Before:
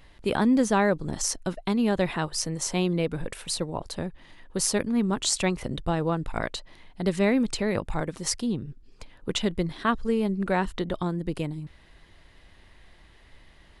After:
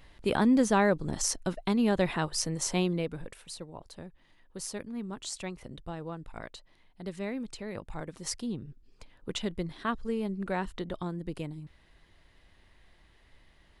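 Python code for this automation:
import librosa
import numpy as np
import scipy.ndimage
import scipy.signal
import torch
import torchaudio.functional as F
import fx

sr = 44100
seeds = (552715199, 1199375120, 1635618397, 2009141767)

y = fx.gain(x, sr, db=fx.line((2.78, -2.0), (3.48, -13.0), (7.64, -13.0), (8.33, -7.0)))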